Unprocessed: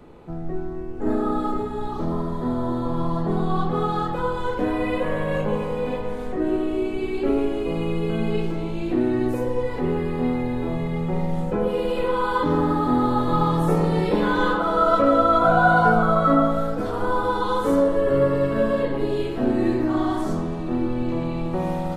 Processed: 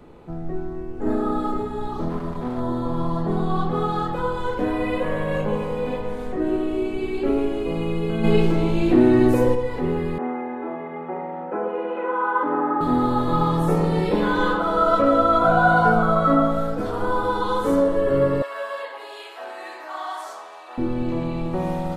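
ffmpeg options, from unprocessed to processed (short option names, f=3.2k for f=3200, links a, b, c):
-filter_complex "[0:a]asplit=3[a][b][c];[a]afade=t=out:st=2.08:d=0.02[d];[b]aeval=exprs='clip(val(0),-1,0.0335)':c=same,afade=t=in:st=2.08:d=0.02,afade=t=out:st=2.59:d=0.02[e];[c]afade=t=in:st=2.59:d=0.02[f];[d][e][f]amix=inputs=3:normalize=0,asplit=3[g][h][i];[g]afade=t=out:st=8.23:d=0.02[j];[h]acontrast=85,afade=t=in:st=8.23:d=0.02,afade=t=out:st=9.54:d=0.02[k];[i]afade=t=in:st=9.54:d=0.02[l];[j][k][l]amix=inputs=3:normalize=0,asettb=1/sr,asplit=3[m][n][o];[m]atrim=end=10.184[p];[n]atrim=start=10.18:end=12.81,asetpts=PTS-STARTPTS,afade=t=in:d=0.004:c=qsin,afade=t=out:st=2.626:d=0.004:c=qsin,highpass=f=280:w=0.5412,highpass=f=280:w=1.3066,equalizer=f=470:t=q:w=4:g=-5,equalizer=f=780:t=q:w=4:g=5,equalizer=f=1.4k:t=q:w=4:g=4,lowpass=f=2.1k:w=0.5412,lowpass=f=2.1k:w=1.3066[q];[o]atrim=start=12.806[r];[p][q]acrossfade=d=0.004:c1=hsin:c2=qsin[s];[s][r]acrossfade=d=0.004:c1=qsin:c2=hsin,asettb=1/sr,asplit=3[t][u][v];[t]atrim=end=18.424[w];[u]atrim=start=18.42:end=20.78,asetpts=PTS-STARTPTS,afade=t=in:d=0.004:c=qsin,afade=t=out:st=2.356:d=0.004:c=qsin,highpass=f=720:w=0.5412,highpass=f=720:w=1.3066[x];[v]atrim=start=20.776[y];[w][x]acrossfade=d=0.004:c1=hsin:c2=qsin[z];[z][y]acrossfade=d=0.004:c1=qsin:c2=hsin"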